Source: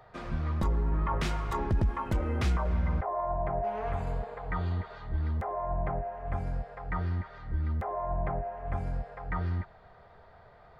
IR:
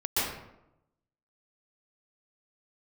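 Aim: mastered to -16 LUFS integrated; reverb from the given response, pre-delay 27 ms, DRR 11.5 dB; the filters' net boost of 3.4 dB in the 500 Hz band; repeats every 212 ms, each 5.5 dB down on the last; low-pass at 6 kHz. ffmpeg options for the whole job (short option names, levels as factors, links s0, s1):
-filter_complex "[0:a]lowpass=6000,equalizer=f=500:t=o:g=5,aecho=1:1:212|424|636|848|1060|1272|1484:0.531|0.281|0.149|0.079|0.0419|0.0222|0.0118,asplit=2[s0][s1];[1:a]atrim=start_sample=2205,adelay=27[s2];[s1][s2]afir=irnorm=-1:irlink=0,volume=0.0794[s3];[s0][s3]amix=inputs=2:normalize=0,volume=5.31"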